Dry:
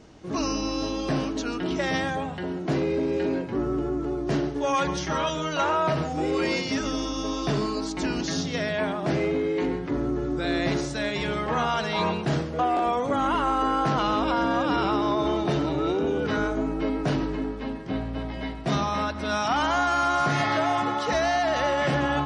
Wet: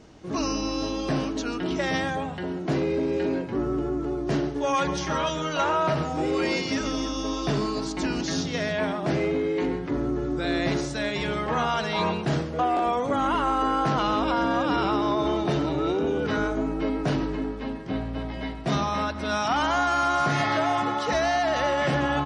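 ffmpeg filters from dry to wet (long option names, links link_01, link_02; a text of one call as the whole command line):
ffmpeg -i in.wav -filter_complex "[0:a]asplit=3[link_01][link_02][link_03];[link_01]afade=type=out:start_time=4.85:duration=0.02[link_04];[link_02]aecho=1:1:290:0.178,afade=type=in:start_time=4.85:duration=0.02,afade=type=out:start_time=8.98:duration=0.02[link_05];[link_03]afade=type=in:start_time=8.98:duration=0.02[link_06];[link_04][link_05][link_06]amix=inputs=3:normalize=0" out.wav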